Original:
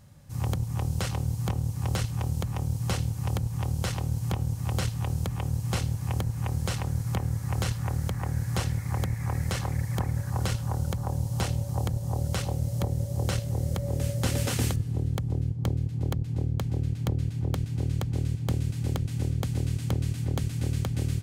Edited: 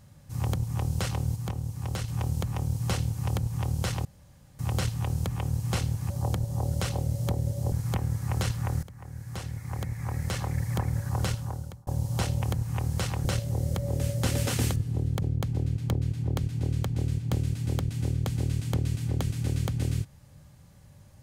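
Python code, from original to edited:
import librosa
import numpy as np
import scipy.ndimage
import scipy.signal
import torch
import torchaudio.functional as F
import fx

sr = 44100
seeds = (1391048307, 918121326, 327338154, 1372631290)

y = fx.edit(x, sr, fx.clip_gain(start_s=1.36, length_s=0.72, db=-4.0),
    fx.room_tone_fill(start_s=4.05, length_s=0.54),
    fx.swap(start_s=6.1, length_s=0.83, other_s=11.63, other_length_s=1.62),
    fx.fade_in_from(start_s=8.04, length_s=1.84, floor_db=-18.0),
    fx.fade_out_span(start_s=10.46, length_s=0.62),
    fx.cut(start_s=15.22, length_s=1.17), tone=tone)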